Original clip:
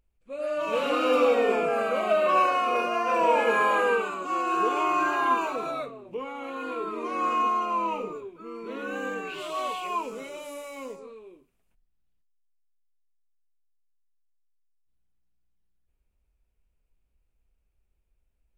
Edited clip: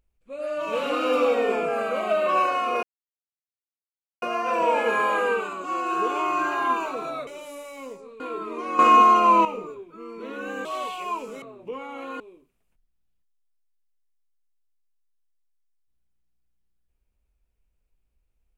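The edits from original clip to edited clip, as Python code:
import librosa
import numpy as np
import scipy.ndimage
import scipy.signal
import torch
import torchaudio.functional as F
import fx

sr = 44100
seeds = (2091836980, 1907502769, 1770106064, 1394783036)

y = fx.edit(x, sr, fx.insert_silence(at_s=2.83, length_s=1.39),
    fx.swap(start_s=5.88, length_s=0.78, other_s=10.26, other_length_s=0.93),
    fx.clip_gain(start_s=7.25, length_s=0.66, db=10.5),
    fx.cut(start_s=9.11, length_s=0.38), tone=tone)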